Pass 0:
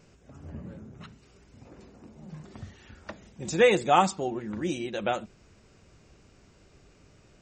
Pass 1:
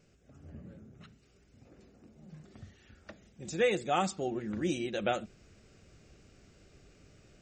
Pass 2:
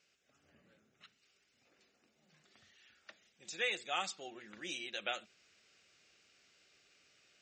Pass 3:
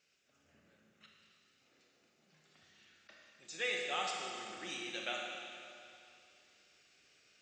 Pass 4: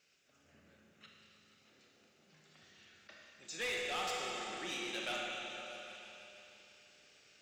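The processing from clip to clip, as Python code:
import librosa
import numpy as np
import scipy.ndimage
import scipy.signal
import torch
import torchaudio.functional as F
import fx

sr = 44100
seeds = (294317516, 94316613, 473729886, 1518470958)

y1 = fx.peak_eq(x, sr, hz=970.0, db=-9.5, octaves=0.4)
y1 = fx.rider(y1, sr, range_db=3, speed_s=0.5)
y1 = y1 * 10.0 ** (-4.5 / 20.0)
y2 = fx.bandpass_q(y1, sr, hz=3400.0, q=0.87)
y2 = y2 * 10.0 ** (1.5 / 20.0)
y3 = fx.rev_schroeder(y2, sr, rt60_s=2.6, comb_ms=25, drr_db=-0.5)
y3 = fx.attack_slew(y3, sr, db_per_s=470.0)
y3 = y3 * 10.0 ** (-2.5 / 20.0)
y4 = 10.0 ** (-36.5 / 20.0) * np.tanh(y3 / 10.0 ** (-36.5 / 20.0))
y4 = fx.echo_opening(y4, sr, ms=160, hz=200, octaves=2, feedback_pct=70, wet_db=-6)
y4 = y4 * 10.0 ** (3.0 / 20.0)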